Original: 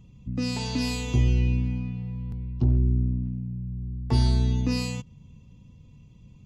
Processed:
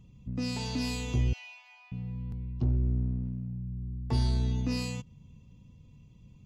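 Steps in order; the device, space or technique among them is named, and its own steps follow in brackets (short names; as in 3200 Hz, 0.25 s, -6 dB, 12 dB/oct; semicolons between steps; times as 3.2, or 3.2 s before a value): 1.33–1.92 steep high-pass 630 Hz 96 dB/oct; parallel distortion (in parallel at -7 dB: hard clip -27.5 dBFS, distortion -4 dB); on the sum: gain -7 dB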